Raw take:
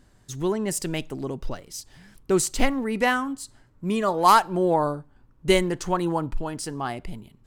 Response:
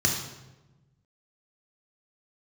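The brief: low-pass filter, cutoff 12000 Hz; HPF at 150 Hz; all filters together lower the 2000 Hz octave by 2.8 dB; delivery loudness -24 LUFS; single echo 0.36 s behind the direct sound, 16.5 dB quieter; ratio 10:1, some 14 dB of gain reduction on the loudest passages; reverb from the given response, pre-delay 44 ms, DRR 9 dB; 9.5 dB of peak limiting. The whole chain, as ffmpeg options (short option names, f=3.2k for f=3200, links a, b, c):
-filter_complex "[0:a]highpass=150,lowpass=12k,equalizer=f=2k:t=o:g=-3.5,acompressor=threshold=-26dB:ratio=10,alimiter=level_in=1.5dB:limit=-24dB:level=0:latency=1,volume=-1.5dB,aecho=1:1:360:0.15,asplit=2[a][b];[1:a]atrim=start_sample=2205,adelay=44[c];[b][c]afir=irnorm=-1:irlink=0,volume=-20.5dB[d];[a][d]amix=inputs=2:normalize=0,volume=10dB"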